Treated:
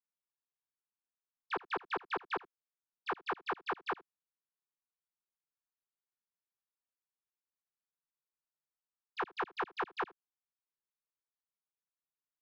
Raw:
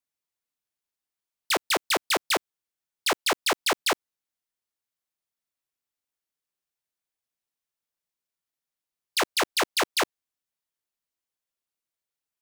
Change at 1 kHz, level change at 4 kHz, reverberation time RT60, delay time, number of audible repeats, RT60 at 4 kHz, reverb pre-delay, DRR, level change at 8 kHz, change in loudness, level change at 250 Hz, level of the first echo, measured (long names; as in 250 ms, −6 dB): −8.5 dB, −24.0 dB, no reverb audible, 77 ms, 1, no reverb audible, no reverb audible, no reverb audible, below −40 dB, −13.5 dB, −12.5 dB, −21.5 dB